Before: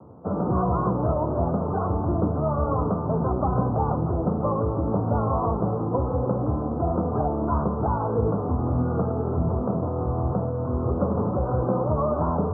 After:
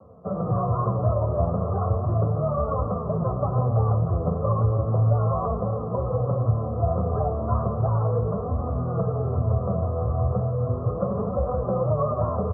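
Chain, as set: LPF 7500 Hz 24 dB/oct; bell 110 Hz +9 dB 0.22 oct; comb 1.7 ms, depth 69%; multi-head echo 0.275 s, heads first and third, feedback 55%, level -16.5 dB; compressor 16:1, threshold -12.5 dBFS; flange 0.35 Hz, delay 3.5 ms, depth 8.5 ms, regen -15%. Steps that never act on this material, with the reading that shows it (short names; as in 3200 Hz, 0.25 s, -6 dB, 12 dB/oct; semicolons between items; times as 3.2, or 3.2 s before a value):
LPF 7500 Hz: input band ends at 1400 Hz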